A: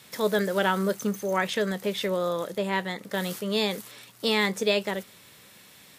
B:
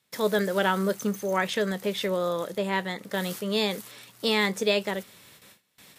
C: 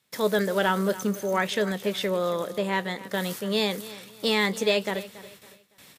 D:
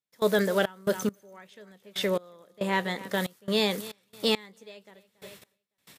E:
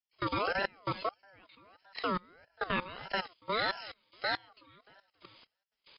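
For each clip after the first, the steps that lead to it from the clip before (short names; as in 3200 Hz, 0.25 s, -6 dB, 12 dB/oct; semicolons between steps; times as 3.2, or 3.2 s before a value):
gate with hold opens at -41 dBFS
in parallel at -10 dB: overloaded stage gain 16.5 dB; on the sum: feedback echo 0.28 s, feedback 32%, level -17 dB; gain -1.5 dB
step gate ".xx.x....x..xxx" 69 bpm -24 dB
nonlinear frequency compression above 2800 Hz 4:1; level quantiser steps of 14 dB; ring modulator with a swept carrier 950 Hz, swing 25%, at 1.6 Hz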